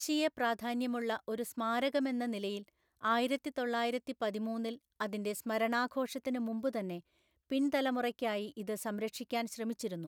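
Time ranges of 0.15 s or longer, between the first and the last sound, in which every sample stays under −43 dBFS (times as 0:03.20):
0:02.61–0:03.03
0:04.75–0:05.00
0:06.99–0:07.50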